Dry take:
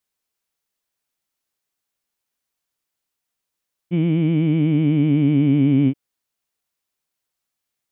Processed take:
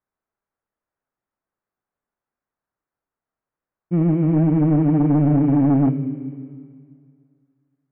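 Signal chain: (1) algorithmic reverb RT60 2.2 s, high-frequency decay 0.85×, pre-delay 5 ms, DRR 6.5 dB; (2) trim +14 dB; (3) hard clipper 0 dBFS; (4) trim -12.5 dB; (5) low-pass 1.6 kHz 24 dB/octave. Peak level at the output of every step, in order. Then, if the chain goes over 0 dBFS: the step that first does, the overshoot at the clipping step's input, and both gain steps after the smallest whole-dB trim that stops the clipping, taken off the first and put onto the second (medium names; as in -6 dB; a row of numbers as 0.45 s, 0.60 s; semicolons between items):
-6.0 dBFS, +8.0 dBFS, 0.0 dBFS, -12.5 dBFS, -12.0 dBFS; step 2, 8.0 dB; step 2 +6 dB, step 4 -4.5 dB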